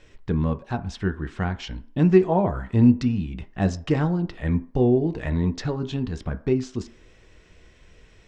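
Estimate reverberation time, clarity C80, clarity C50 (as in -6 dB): 0.50 s, 21.5 dB, 17.5 dB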